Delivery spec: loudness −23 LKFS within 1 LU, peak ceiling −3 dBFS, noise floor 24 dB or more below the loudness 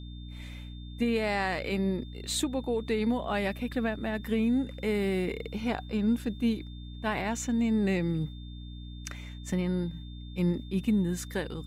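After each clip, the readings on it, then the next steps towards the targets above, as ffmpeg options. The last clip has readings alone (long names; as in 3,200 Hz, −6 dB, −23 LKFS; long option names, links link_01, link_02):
mains hum 60 Hz; hum harmonics up to 300 Hz; level of the hum −39 dBFS; interfering tone 3,600 Hz; level of the tone −53 dBFS; integrated loudness −30.5 LKFS; sample peak −16.5 dBFS; target loudness −23.0 LKFS
→ -af "bandreject=frequency=60:width_type=h:width=6,bandreject=frequency=120:width_type=h:width=6,bandreject=frequency=180:width_type=h:width=6,bandreject=frequency=240:width_type=h:width=6,bandreject=frequency=300:width_type=h:width=6"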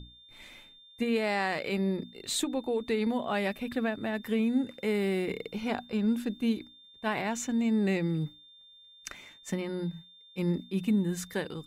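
mains hum none found; interfering tone 3,600 Hz; level of the tone −53 dBFS
→ -af "bandreject=frequency=3600:width=30"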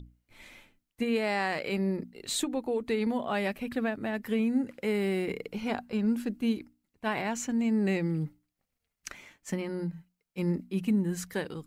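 interfering tone none found; integrated loudness −31.0 LKFS; sample peak −17.0 dBFS; target loudness −23.0 LKFS
→ -af "volume=8dB"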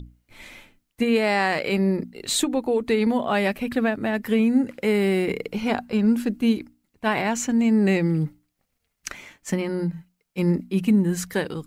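integrated loudness −23.0 LKFS; sample peak −9.0 dBFS; background noise floor −76 dBFS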